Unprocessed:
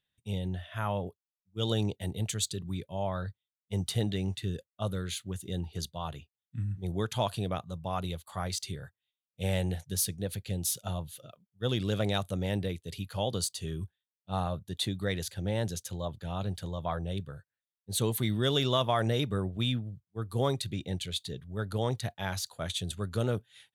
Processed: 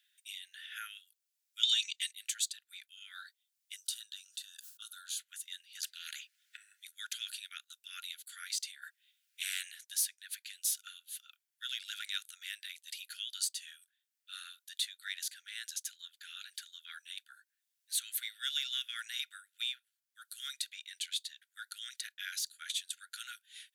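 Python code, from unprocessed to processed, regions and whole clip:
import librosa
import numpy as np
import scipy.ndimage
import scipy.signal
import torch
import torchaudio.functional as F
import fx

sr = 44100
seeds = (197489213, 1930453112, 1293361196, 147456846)

y = fx.chain(x, sr, fx.band_shelf(hz=4100.0, db=13.5, octaves=2.3),
    fx.comb(ms=3.9, depth=0.81), at=(1.63, 2.12))
y = fx.chain(y, sr, fx.fixed_phaser(hz=870.0, stages=4),
    fx.sustainer(db_per_s=150.0), at=(3.76, 5.19))
y = fx.chain(y, sr, fx.lowpass(hz=2100.0, slope=6),
    fx.spectral_comp(ratio=4.0), at=(5.83, 6.57))
y = fx.chain(y, sr, fx.bass_treble(bass_db=5, treble_db=-7),
    fx.spectral_comp(ratio=2.0), at=(8.82, 9.71))
y = scipy.signal.sosfilt(scipy.signal.cheby1(8, 1.0, 1400.0, 'highpass', fs=sr, output='sos'), y)
y = fx.high_shelf(y, sr, hz=4000.0, db=5.0)
y = fx.band_squash(y, sr, depth_pct=40)
y = F.gain(torch.from_numpy(y), -2.5).numpy()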